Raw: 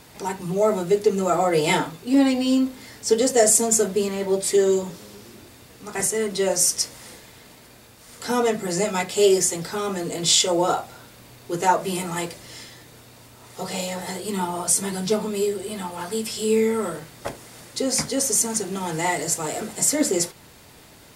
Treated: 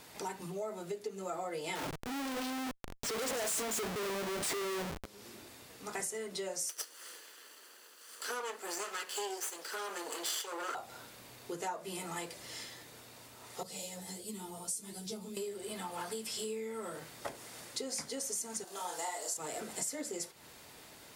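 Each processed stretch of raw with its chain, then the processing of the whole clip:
0:01.75–0:05.06: mains-hum notches 50/100/150/200/250 Hz + comparator with hysteresis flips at −32.5 dBFS
0:06.69–0:10.75: lower of the sound and its delayed copy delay 0.65 ms + high-pass filter 370 Hz 24 dB per octave
0:13.63–0:15.37: parametric band 1,200 Hz −13.5 dB 2.9 octaves + string-ensemble chorus
0:18.64–0:19.37: high-pass filter 610 Hz + parametric band 2,200 Hz −10 dB 0.9 octaves + double-tracking delay 33 ms −3 dB
whole clip: downward compressor 6 to 1, threshold −31 dBFS; low-shelf EQ 220 Hz −10 dB; level −4.5 dB

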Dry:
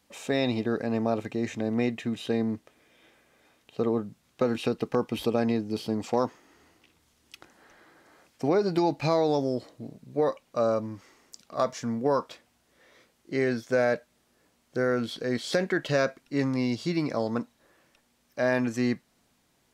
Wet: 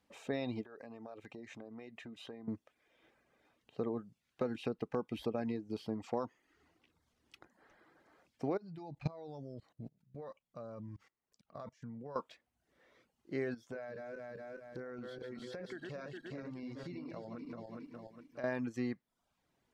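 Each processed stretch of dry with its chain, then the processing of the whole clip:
0:00.64–0:02.48: downward compressor 5 to 1, threshold −34 dBFS + low-shelf EQ 240 Hz −9 dB
0:08.57–0:12.16: low shelf with overshoot 220 Hz +6 dB, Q 1.5 + output level in coarse steps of 19 dB
0:13.54–0:18.44: feedback delay that plays each chunk backwards 206 ms, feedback 57%, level −4.5 dB + downward compressor, threshold −33 dBFS
whole clip: downward compressor 1.5 to 1, threshold −29 dBFS; high-shelf EQ 4,200 Hz −11.5 dB; reverb reduction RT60 0.61 s; level −7 dB

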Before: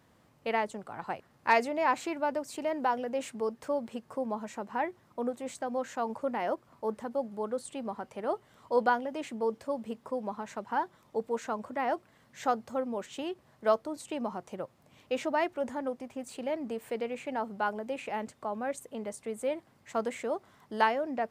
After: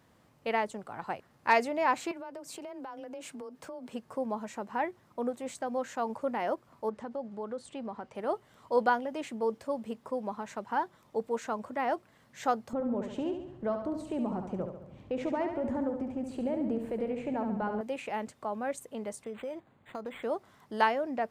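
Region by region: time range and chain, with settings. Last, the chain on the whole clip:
0:02.11–0:03.93: frequency shifter +21 Hz + notch filter 1,900 Hz, Q 15 + downward compressor 12 to 1, threshold −39 dBFS
0:06.89–0:08.15: downward compressor 2 to 1, threshold −35 dBFS + high-frequency loss of the air 70 metres
0:12.73–0:17.81: spectral tilt −4 dB per octave + downward compressor 3 to 1, threshold −30 dBFS + repeating echo 70 ms, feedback 55%, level −7 dB
0:19.24–0:20.23: downward compressor 5 to 1, threshold −34 dBFS + linearly interpolated sample-rate reduction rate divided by 8×
whole clip: no processing

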